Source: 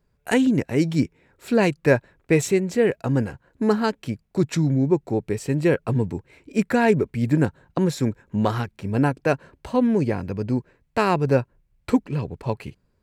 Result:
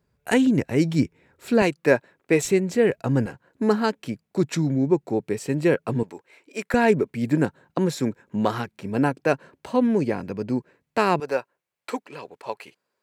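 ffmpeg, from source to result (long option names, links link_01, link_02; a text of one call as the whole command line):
ffmpeg -i in.wav -af "asetnsamples=nb_out_samples=441:pad=0,asendcmd='1.62 highpass f 220;2.45 highpass f 74;3.26 highpass f 160;6.03 highpass f 530;6.74 highpass f 170;11.2 highpass f 580',highpass=63" out.wav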